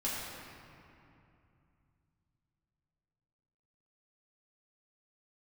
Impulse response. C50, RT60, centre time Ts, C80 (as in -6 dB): -2.0 dB, 2.7 s, 145 ms, -0.5 dB